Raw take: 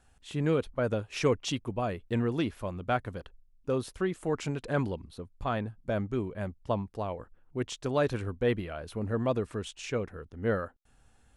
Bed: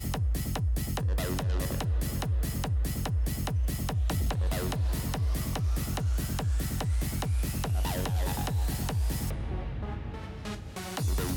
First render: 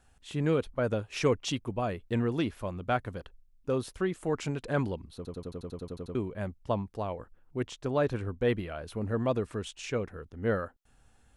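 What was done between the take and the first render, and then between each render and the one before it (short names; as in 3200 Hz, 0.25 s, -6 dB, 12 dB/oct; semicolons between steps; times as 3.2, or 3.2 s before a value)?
5.16 stutter in place 0.09 s, 11 plays; 7.68–8.41 high shelf 2600 Hz -7 dB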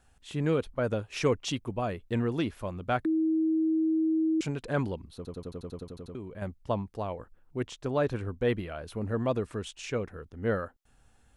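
3.05–4.41 bleep 319 Hz -23 dBFS; 5.83–6.42 compressor 2.5:1, threshold -39 dBFS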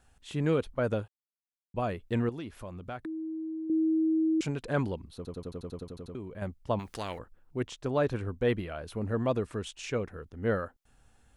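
1.08–1.74 mute; 2.29–3.7 compressor 2.5:1, threshold -40 dBFS; 6.79–7.19 spectral compressor 2:1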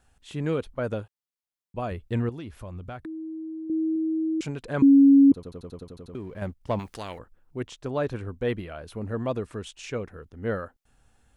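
1.91–3.96 bell 67 Hz +9.5 dB 1.6 oct; 4.82–5.32 bleep 277 Hz -11 dBFS; 6.13–6.92 sample leveller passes 1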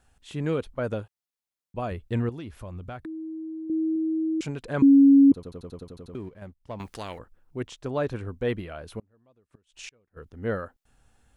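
6.29–6.8 gain -10 dB; 8.99–10.17 flipped gate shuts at -29 dBFS, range -34 dB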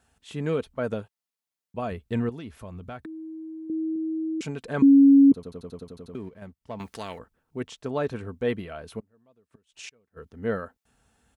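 HPF 69 Hz; comb 4.5 ms, depth 30%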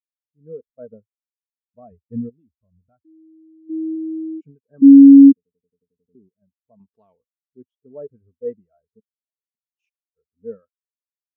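AGC gain up to 16 dB; spectral expander 2.5:1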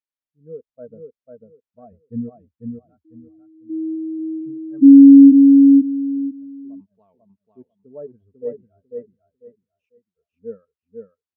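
air absorption 120 m; feedback echo 0.496 s, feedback 22%, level -4 dB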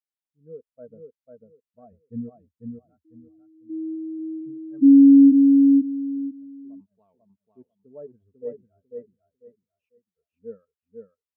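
gain -5.5 dB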